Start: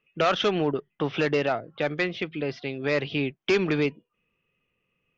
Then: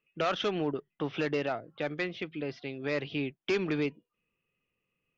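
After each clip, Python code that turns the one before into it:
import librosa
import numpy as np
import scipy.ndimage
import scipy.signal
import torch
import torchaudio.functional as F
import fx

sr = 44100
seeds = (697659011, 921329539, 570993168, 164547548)

y = fx.peak_eq(x, sr, hz=300.0, db=2.5, octaves=0.33)
y = F.gain(torch.from_numpy(y), -7.0).numpy()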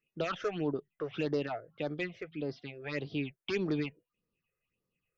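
y = fx.phaser_stages(x, sr, stages=6, low_hz=220.0, high_hz=2700.0, hz=1.7, feedback_pct=25)
y = F.gain(torch.from_numpy(y), -1.0).numpy()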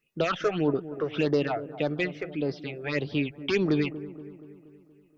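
y = fx.echo_wet_lowpass(x, sr, ms=237, feedback_pct=56, hz=1000.0, wet_db=-13.5)
y = F.gain(torch.from_numpy(y), 7.5).numpy()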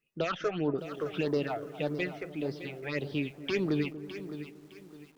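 y = fx.echo_crushed(x, sr, ms=611, feedback_pct=35, bits=8, wet_db=-11.5)
y = F.gain(torch.from_numpy(y), -5.0).numpy()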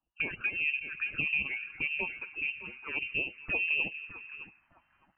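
y = fx.freq_invert(x, sr, carrier_hz=2900)
y = fx.env_phaser(y, sr, low_hz=390.0, high_hz=1400.0, full_db=-27.5)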